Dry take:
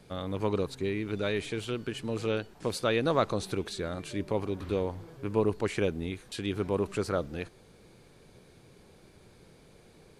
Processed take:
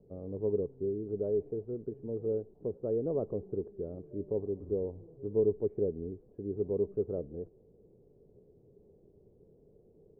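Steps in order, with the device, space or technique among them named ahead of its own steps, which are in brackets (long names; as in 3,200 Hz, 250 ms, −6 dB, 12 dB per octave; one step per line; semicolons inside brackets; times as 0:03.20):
0:01.18–0:01.63: parametric band 690 Hz +4.5 dB 0.97 octaves
under water (low-pass filter 580 Hz 24 dB per octave; parametric band 420 Hz +9 dB 0.32 octaves)
level −6.5 dB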